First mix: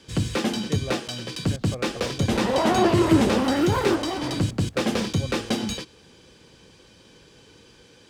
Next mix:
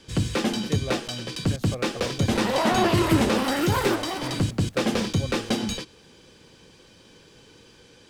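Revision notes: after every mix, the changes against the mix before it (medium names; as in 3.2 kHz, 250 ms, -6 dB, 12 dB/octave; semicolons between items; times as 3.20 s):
speech: remove distance through air 260 m; second sound: add tilt EQ +2.5 dB/octave; master: remove high-pass 48 Hz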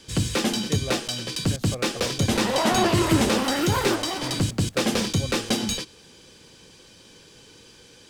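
first sound: add treble shelf 4.1 kHz +8.5 dB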